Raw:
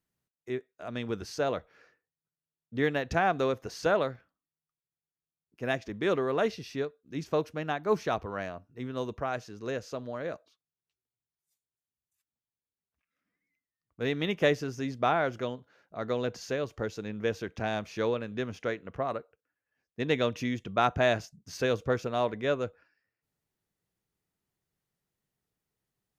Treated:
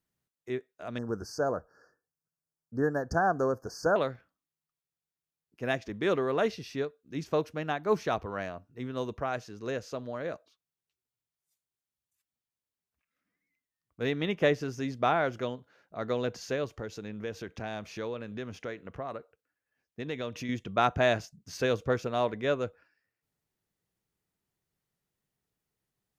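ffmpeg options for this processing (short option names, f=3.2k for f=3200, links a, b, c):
-filter_complex "[0:a]asettb=1/sr,asplit=3[a][b][c];[a]atrim=end=0.984[d];[b]atrim=start=0.98:end=3.96,asetpts=PTS-STARTPTS,afade=t=in:d=0.004:c=qsin,afade=t=out:st=2.976:d=0.004:c=qsin,asuperstop=centerf=2800:order=20:qfactor=0.99[e];[c]atrim=start=3.956[f];[d][e]acrossfade=d=0.004:c1=hsin:c2=qsin[g];[g][f]acrossfade=d=0.004:c1=qsin:c2=hsin,asettb=1/sr,asplit=3[h][i][j];[h]atrim=end=14.104[k];[i]atrim=start=14.1:end=14.61,asetpts=PTS-STARTPTS,afade=t=in:d=0.004:c=qsin,afade=t=out:st=0.506:d=0.004:c=qsin,highshelf=f=4.1k:g=-6[l];[j]atrim=start=14.606[m];[k][l]acrossfade=d=0.004:c1=hsin:c2=qsin[n];[n][m]acrossfade=d=0.004:c1=qsin:c2=hsin,asettb=1/sr,asplit=3[o][p][q];[o]atrim=end=16.714[r];[p]atrim=start=16.71:end=20.49,asetpts=PTS-STARTPTS,afade=t=in:d=0.004:c=qsin,afade=t=out:st=3.776:d=0.004:c=qsin,acompressor=threshold=-37dB:ratio=2:attack=3.2:release=140:knee=1:detection=peak[s];[q]atrim=start=20.486[t];[r][s]acrossfade=d=0.004:c1=hsin:c2=qsin[u];[u][t]acrossfade=d=0.004:c1=qsin:c2=hsin"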